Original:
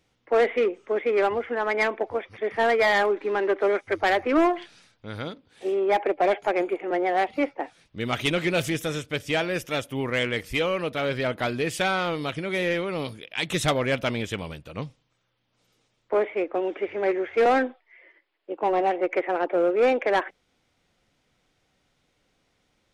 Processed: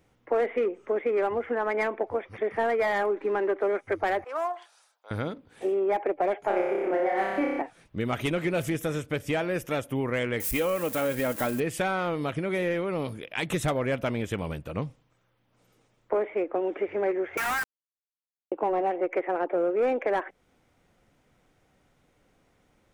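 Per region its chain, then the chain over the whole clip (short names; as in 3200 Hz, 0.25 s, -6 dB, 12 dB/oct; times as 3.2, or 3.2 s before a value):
4.24–5.11 HPF 750 Hz 24 dB/oct + bell 2100 Hz -13.5 dB 1.4 oct
6.46–7.62 flutter echo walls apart 5.2 m, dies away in 0.97 s + mismatched tape noise reduction decoder only
10.4–11.6 switching spikes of -24.5 dBFS + comb 3.7 ms, depth 37%
17.37–18.52 steep high-pass 920 Hz 48 dB/oct + companded quantiser 2-bit + Doppler distortion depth 0.13 ms
whole clip: bell 4200 Hz -10.5 dB 1.7 oct; compressor 2.5:1, threshold -33 dBFS; gain +5.5 dB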